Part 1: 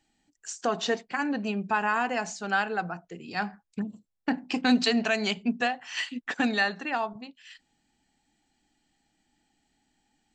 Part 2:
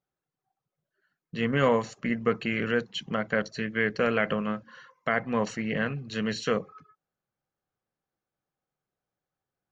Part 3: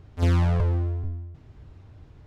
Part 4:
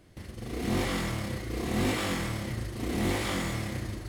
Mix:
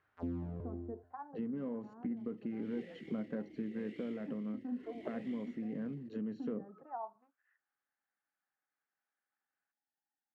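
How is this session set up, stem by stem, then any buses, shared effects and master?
-12.5 dB, 0.00 s, bus A, no send, inverse Chebyshev low-pass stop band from 5600 Hz, stop band 70 dB
+1.5 dB, 0.00 s, bus A, no send, soft clip -17.5 dBFS, distortion -16 dB
-8.5 dB, 0.00 s, bus A, no send, auto duck -19 dB, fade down 0.45 s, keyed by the second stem
-12.5 dB, 2.00 s, no bus, no send, vowel sweep e-i 2.2 Hz
bus A: 0.0 dB, auto-wah 270–1700 Hz, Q 2.9, down, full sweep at -29.5 dBFS; compressor, threshold -35 dBFS, peak gain reduction 8.5 dB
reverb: off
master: vocal rider within 3 dB 0.5 s

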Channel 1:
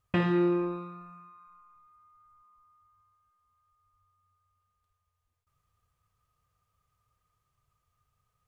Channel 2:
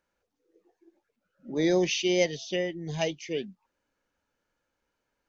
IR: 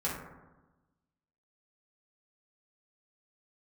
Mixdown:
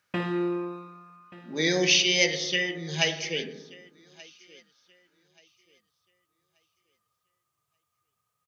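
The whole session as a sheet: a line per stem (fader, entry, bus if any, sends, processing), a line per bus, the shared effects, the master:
-2.0 dB, 0.00 s, no send, echo send -18.5 dB, dry
-5.5 dB, 0.00 s, send -7 dB, echo send -20 dB, band shelf 2800 Hz +10 dB 2.4 oct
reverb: on, RT60 1.1 s, pre-delay 3 ms
echo: feedback echo 1.181 s, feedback 26%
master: HPF 170 Hz 12 dB/oct; high shelf 4300 Hz +6.5 dB

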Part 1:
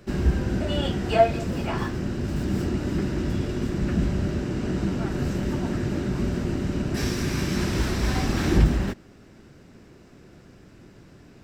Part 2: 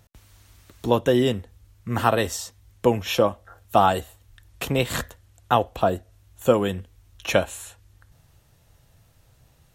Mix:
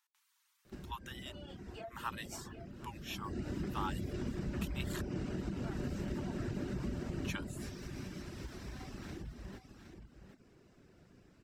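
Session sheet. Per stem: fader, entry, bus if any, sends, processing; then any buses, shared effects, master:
3.11 s -14.5 dB -> 3.4 s -4.5 dB -> 7.26 s -4.5 dB -> 7.65 s -12 dB, 0.65 s, no send, echo send -9 dB, compressor 16:1, threshold -29 dBFS, peak gain reduction 18.5 dB
-16.5 dB, 0.00 s, muted 5.06–7.24, no send, echo send -23.5 dB, steep high-pass 880 Hz 72 dB/oct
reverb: off
echo: echo 0.766 s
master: reverb removal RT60 0.53 s

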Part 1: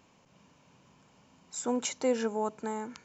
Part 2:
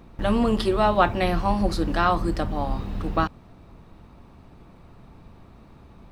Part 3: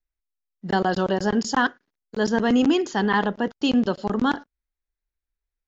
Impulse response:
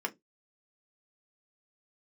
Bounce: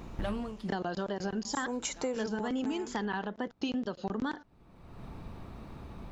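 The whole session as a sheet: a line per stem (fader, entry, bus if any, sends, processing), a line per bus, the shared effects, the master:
+2.5 dB, 0.00 s, no send, dry
+3.0 dB, 0.00 s, no send, compressor 2:1, threshold -32 dBFS, peak gain reduction 10.5 dB; soft clip -23 dBFS, distortion -17 dB; auto duck -22 dB, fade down 0.30 s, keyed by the third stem
-3.0 dB, 0.00 s, no send, wow and flutter 96 cents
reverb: off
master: compressor 10:1, threshold -30 dBFS, peak gain reduction 13 dB

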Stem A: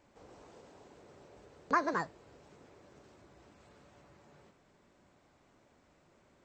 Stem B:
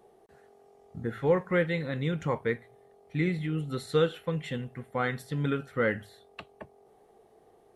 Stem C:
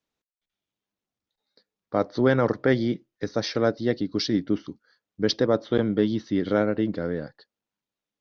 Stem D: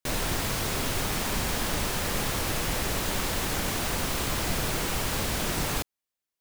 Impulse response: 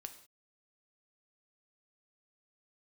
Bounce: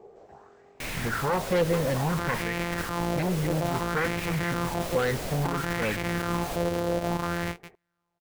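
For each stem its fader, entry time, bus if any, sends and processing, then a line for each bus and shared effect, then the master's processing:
-4.0 dB, 0.00 s, no bus, send -8 dB, auto duck -9 dB, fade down 0.80 s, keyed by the second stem
-9.0 dB, 0.00 s, bus A, send -4 dB, low shelf 340 Hz +10 dB; LFO low-pass saw up 3.1 Hz 1000–2300 Hz
+2.5 dB, 0.25 s, bus A, no send, sample sorter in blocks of 256 samples
-11.5 dB, 0.75 s, bus A, no send, dry
bus A: 0.0 dB, negative-ratio compressor -26 dBFS, ratio -1; limiter -19.5 dBFS, peak gain reduction 10 dB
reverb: on, pre-delay 3 ms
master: wavefolder -23 dBFS; LFO bell 0.59 Hz 460–2300 Hz +11 dB

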